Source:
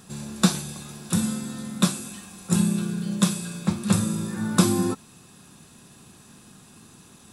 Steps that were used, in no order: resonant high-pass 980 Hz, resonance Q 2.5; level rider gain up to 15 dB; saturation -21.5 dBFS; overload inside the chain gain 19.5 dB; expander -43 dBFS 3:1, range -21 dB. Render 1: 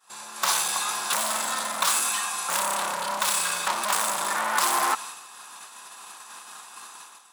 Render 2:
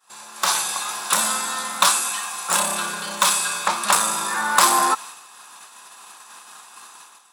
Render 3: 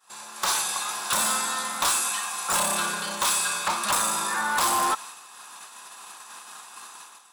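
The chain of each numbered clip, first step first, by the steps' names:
expander > saturation > level rider > overload inside the chain > resonant high-pass; expander > saturation > resonant high-pass > overload inside the chain > level rider; expander > saturation > resonant high-pass > level rider > overload inside the chain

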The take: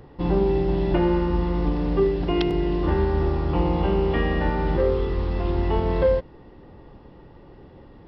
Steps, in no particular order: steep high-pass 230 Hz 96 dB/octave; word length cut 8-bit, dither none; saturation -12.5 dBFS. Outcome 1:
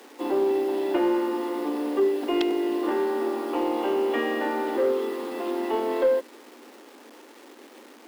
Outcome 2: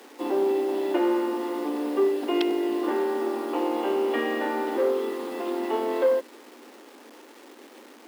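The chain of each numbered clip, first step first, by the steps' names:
word length cut > steep high-pass > saturation; saturation > word length cut > steep high-pass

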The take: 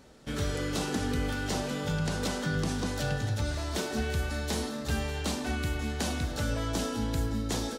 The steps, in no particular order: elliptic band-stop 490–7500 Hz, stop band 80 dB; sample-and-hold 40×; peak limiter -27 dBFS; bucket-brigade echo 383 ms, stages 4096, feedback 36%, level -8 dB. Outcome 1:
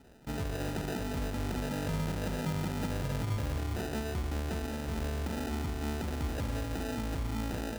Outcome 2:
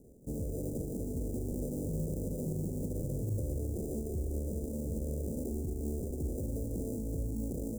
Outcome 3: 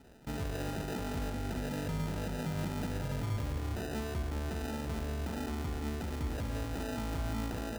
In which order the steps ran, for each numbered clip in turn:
elliptic band-stop > peak limiter > bucket-brigade echo > sample-and-hold; peak limiter > bucket-brigade echo > sample-and-hold > elliptic band-stop; peak limiter > elliptic band-stop > sample-and-hold > bucket-brigade echo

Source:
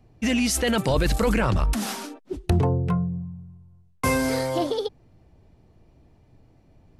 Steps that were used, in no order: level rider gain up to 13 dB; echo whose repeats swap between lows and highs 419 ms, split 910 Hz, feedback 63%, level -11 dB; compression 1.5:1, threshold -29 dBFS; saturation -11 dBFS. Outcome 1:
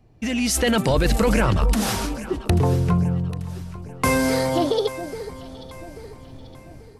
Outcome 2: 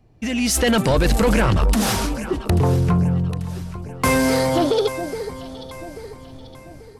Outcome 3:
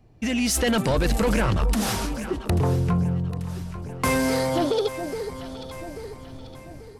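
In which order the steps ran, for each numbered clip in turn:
saturation > level rider > compression > echo whose repeats swap between lows and highs; compression > level rider > echo whose repeats swap between lows and highs > saturation; level rider > saturation > echo whose repeats swap between lows and highs > compression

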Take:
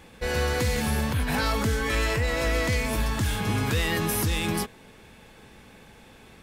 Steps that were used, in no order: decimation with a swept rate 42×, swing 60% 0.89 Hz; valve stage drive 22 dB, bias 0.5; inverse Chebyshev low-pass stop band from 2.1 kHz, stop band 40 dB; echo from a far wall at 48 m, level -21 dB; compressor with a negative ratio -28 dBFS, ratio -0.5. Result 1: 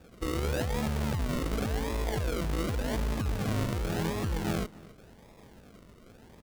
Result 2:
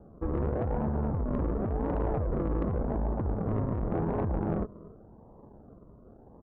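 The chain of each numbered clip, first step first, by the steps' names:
valve stage > compressor with a negative ratio > inverse Chebyshev low-pass > decimation with a swept rate > echo from a far wall; echo from a far wall > decimation with a swept rate > inverse Chebyshev low-pass > valve stage > compressor with a negative ratio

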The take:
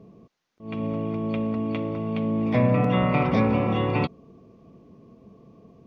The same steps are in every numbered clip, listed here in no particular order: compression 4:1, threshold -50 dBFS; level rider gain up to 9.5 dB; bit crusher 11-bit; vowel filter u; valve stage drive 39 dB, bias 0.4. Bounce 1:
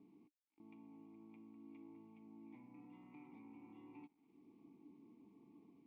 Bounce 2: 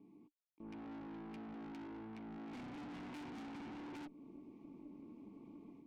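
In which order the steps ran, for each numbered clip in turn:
level rider > compression > valve stage > bit crusher > vowel filter; bit crusher > level rider > vowel filter > valve stage > compression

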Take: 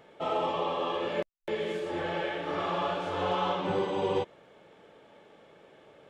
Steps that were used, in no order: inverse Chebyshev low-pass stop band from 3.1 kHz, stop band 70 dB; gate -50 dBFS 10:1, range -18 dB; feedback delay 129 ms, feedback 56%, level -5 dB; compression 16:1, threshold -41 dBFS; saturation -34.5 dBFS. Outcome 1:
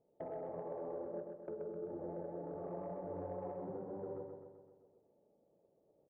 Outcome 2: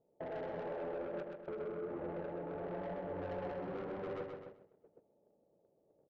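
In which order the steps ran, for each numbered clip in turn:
gate > inverse Chebyshev low-pass > compression > saturation > feedback delay; inverse Chebyshev low-pass > saturation > compression > feedback delay > gate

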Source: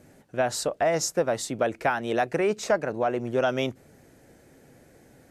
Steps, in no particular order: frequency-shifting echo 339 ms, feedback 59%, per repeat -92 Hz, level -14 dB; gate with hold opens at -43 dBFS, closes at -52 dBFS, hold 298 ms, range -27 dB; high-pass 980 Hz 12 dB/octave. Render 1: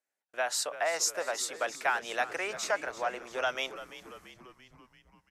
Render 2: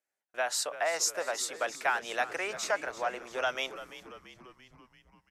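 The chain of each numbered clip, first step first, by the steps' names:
gate with hold > high-pass > frequency-shifting echo; high-pass > gate with hold > frequency-shifting echo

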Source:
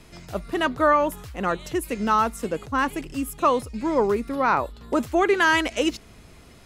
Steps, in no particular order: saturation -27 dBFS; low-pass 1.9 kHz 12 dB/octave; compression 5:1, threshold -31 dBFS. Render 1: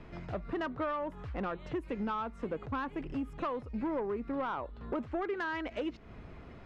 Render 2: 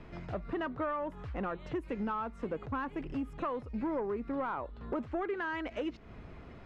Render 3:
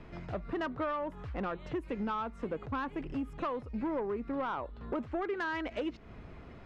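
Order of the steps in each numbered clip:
compression > low-pass > saturation; compression > saturation > low-pass; low-pass > compression > saturation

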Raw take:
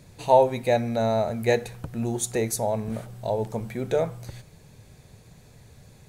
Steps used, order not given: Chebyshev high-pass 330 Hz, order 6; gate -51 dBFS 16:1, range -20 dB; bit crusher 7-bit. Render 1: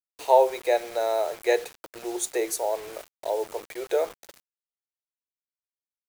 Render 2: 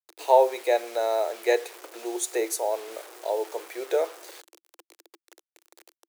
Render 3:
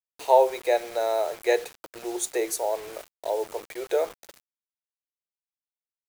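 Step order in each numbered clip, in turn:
gate > Chebyshev high-pass > bit crusher; gate > bit crusher > Chebyshev high-pass; Chebyshev high-pass > gate > bit crusher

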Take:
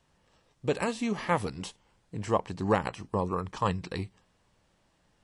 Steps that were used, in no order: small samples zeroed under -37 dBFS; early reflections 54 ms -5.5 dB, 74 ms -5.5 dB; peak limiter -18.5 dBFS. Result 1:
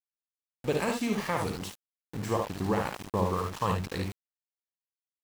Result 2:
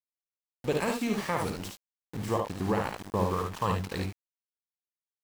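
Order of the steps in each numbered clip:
peak limiter > early reflections > small samples zeroed; small samples zeroed > peak limiter > early reflections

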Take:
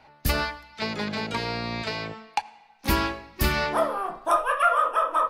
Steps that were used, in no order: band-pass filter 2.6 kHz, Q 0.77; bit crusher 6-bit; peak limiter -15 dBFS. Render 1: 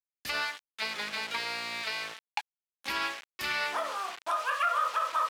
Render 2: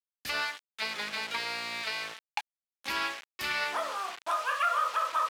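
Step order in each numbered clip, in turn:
bit crusher > peak limiter > band-pass filter; peak limiter > bit crusher > band-pass filter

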